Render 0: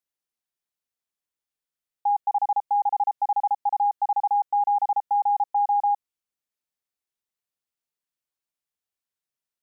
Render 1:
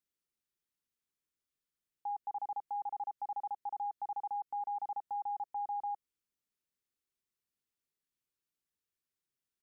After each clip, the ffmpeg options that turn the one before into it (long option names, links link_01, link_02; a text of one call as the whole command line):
ffmpeg -i in.wav -af "firequalizer=gain_entry='entry(390,0);entry(670,-12);entry(1200,-5)':delay=0.05:min_phase=1,alimiter=level_in=11dB:limit=-24dB:level=0:latency=1:release=98,volume=-11dB,volume=2dB" out.wav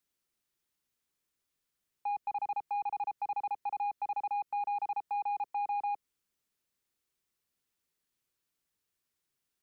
ffmpeg -i in.wav -filter_complex "[0:a]acrossover=split=190|430|550[link_01][link_02][link_03][link_04];[link_01]acrusher=samples=41:mix=1:aa=0.000001[link_05];[link_05][link_02][link_03][link_04]amix=inputs=4:normalize=0,asoftclip=type=tanh:threshold=-35dB,volume=6.5dB" out.wav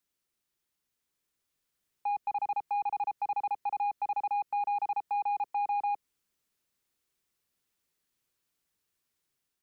ffmpeg -i in.wav -af "dynaudnorm=framelen=930:gausssize=3:maxgain=3dB" out.wav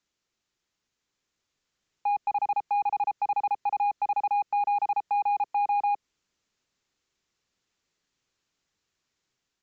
ffmpeg -i in.wav -af "aresample=16000,aresample=44100,volume=5dB" out.wav